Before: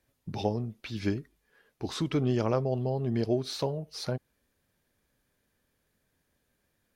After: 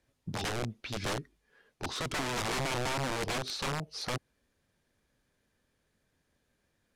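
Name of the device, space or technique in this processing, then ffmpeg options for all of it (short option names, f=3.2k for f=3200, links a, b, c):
overflowing digital effects unit: -af "aeval=exprs='(mod(23.7*val(0)+1,2)-1)/23.7':c=same,lowpass=9.2k"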